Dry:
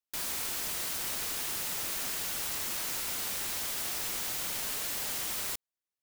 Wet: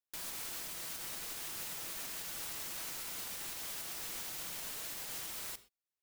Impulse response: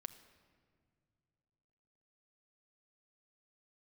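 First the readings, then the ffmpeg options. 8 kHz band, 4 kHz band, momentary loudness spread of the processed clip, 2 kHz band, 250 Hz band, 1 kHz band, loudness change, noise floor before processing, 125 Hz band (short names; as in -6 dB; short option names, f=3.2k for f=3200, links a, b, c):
-8.0 dB, -8.0 dB, 1 LU, -8.0 dB, -7.5 dB, -8.0 dB, -8.0 dB, under -85 dBFS, -7.5 dB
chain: -filter_complex "[0:a]alimiter=level_in=3.5dB:limit=-24dB:level=0:latency=1:release=164,volume=-3.5dB[a];[1:a]atrim=start_sample=2205,afade=t=out:st=0.18:d=0.01,atrim=end_sample=8379[b];[a][b]afir=irnorm=-1:irlink=0"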